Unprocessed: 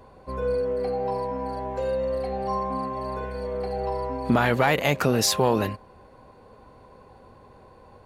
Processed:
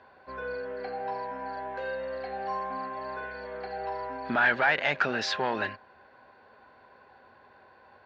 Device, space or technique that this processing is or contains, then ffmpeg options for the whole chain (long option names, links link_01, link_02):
overdrive pedal into a guitar cabinet: -filter_complex "[0:a]asplit=2[link_01][link_02];[link_02]highpass=frequency=720:poles=1,volume=11dB,asoftclip=type=tanh:threshold=-7dB[link_03];[link_01][link_03]amix=inputs=2:normalize=0,lowpass=frequency=4600:poles=1,volume=-6dB,highpass=91,equalizer=frequency=120:width_type=q:width=4:gain=-6,equalizer=frequency=180:width_type=q:width=4:gain=-7,equalizer=frequency=300:width_type=q:width=4:gain=-4,equalizer=frequency=480:width_type=q:width=4:gain=-7,equalizer=frequency=1100:width_type=q:width=4:gain=-5,equalizer=frequency=1600:width_type=q:width=4:gain=10,lowpass=frequency=4600:width=0.5412,lowpass=frequency=4600:width=1.3066,volume=-6.5dB"